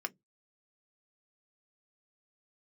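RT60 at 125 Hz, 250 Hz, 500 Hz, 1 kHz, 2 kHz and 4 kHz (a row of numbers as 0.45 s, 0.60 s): 0.25 s, 0.20 s, 0.15 s, 0.10 s, 0.10 s, 0.10 s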